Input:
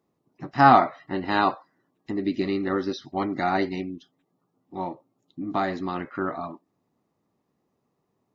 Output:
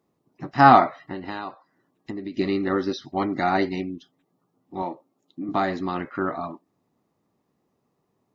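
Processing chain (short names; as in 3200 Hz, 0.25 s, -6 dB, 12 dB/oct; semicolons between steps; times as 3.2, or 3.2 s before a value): 0.98–2.37 compressor 8:1, threshold -32 dBFS, peak gain reduction 15 dB; 4.82–5.49 HPF 200 Hz 12 dB/oct; gain +2 dB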